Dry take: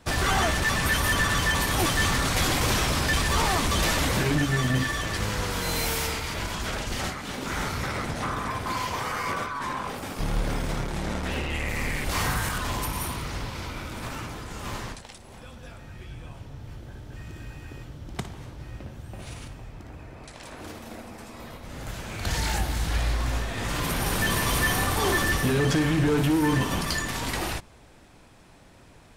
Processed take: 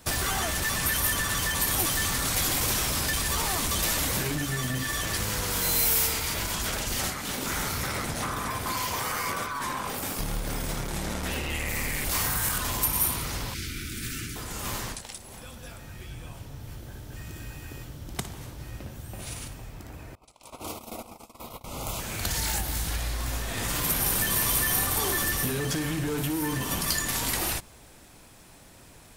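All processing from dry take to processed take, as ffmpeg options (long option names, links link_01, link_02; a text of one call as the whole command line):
ffmpeg -i in.wav -filter_complex "[0:a]asettb=1/sr,asplit=3[link_01][link_02][link_03];[link_01]atrim=end=13.544[link_04];[link_02]atrim=start=13.54:end=14.36,asetpts=PTS-STARTPTS,afade=type=in:duration=0.004:curve=qsin,afade=type=out:start_time=0.816:duration=0.004:curve=qsin,asuperstop=centerf=760:order=8:qfactor=0.71,equalizer=frequency=13000:width=4:gain=-6.5[link_05];[link_03]atrim=start=14.356[link_06];[link_04][link_05]acrossfade=duration=0.004:curve1=hsin:curve2=qsin[link_07];[link_07][link_06]acrossfade=duration=0.004:curve1=qsin:curve2=hsin,asettb=1/sr,asplit=3[link_08][link_09][link_10];[link_08]atrim=end=20.154[link_11];[link_09]atrim=start=20.15:end=22,asetpts=PTS-STARTPTS,afade=type=in:duration=0.004:curve=qsin,afade=type=out:start_time=1.846:duration=0.004:curve=qsin,agate=range=-25dB:threshold=-41dB:ratio=16:release=100:detection=peak,asuperstop=centerf=1700:order=4:qfactor=1.7,equalizer=frequency=1100:width_type=o:width=2.2:gain=8[link_12];[link_10]atrim=start=21.996[link_13];[link_11][link_12]acrossfade=duration=0.004:curve1=hsin:curve2=qsin[link_14];[link_14][link_13]acrossfade=duration=0.004:curve1=qsin:curve2=hsin,acompressor=threshold=-27dB:ratio=6,aemphasis=mode=production:type=50fm" out.wav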